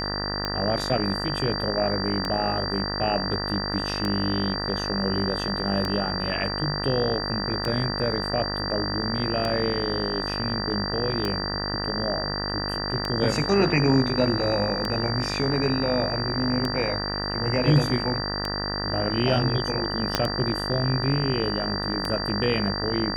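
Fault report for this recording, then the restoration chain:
buzz 50 Hz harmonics 39 -31 dBFS
tick 33 1/3 rpm -13 dBFS
whine 4.7 kHz -30 dBFS
20.15 s: pop -5 dBFS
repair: de-click; band-stop 4.7 kHz, Q 30; de-hum 50 Hz, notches 39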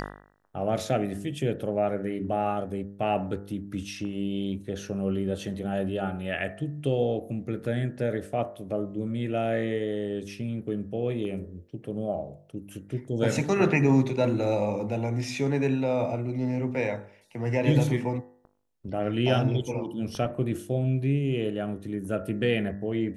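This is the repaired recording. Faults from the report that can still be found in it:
20.15 s: pop

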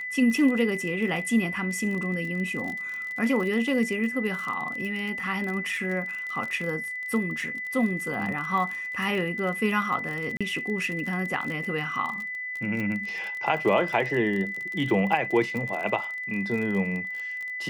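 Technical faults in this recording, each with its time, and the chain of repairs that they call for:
crackle 35 per s -31 dBFS
whine 2 kHz -31 dBFS
10.37–10.41 s: dropout 36 ms
12.80 s: pop -20 dBFS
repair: de-click; band-stop 2 kHz, Q 30; interpolate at 10.37 s, 36 ms

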